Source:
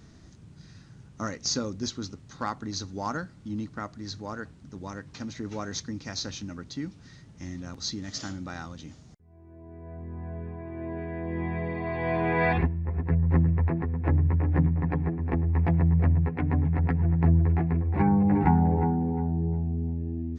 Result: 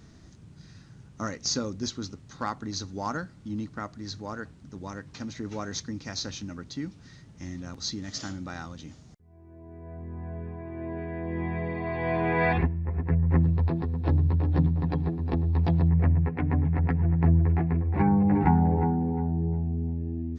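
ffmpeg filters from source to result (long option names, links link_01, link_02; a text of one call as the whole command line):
ffmpeg -i in.wav -filter_complex "[0:a]asettb=1/sr,asplit=3[link_01][link_02][link_03];[link_01]atrim=end=13.434[link_04];[link_02]atrim=start=13.43:end=15.88,asetpts=PTS-STARTPTS,afade=type=in:duration=0.004:curve=qsin,afade=type=out:start_time=2.446:duration=0.004:curve=qsin,highshelf=frequency=2900:width_type=q:width=3:gain=11[link_05];[link_03]atrim=start=15.876[link_06];[link_04][link_05]acrossfade=duration=0.004:curve1=hsin:curve2=qsin[link_07];[link_07][link_06]acrossfade=duration=0.004:curve1=qsin:curve2=hsin" out.wav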